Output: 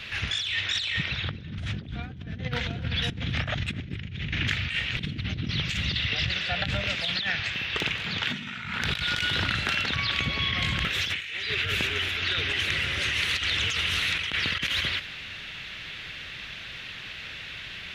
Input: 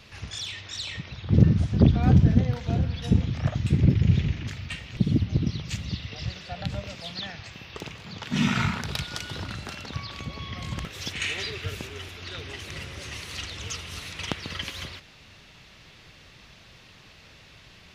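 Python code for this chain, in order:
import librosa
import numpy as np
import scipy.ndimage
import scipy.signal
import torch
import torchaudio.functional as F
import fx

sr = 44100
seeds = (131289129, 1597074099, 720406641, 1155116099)

y = fx.band_shelf(x, sr, hz=2300.0, db=11.0, octaves=1.7)
y = fx.over_compress(y, sr, threshold_db=-30.0, ratio=-1.0)
y = y + 10.0 ** (-21.0 / 20.0) * np.pad(y, (int(257 * sr / 1000.0), 0))[:len(y)]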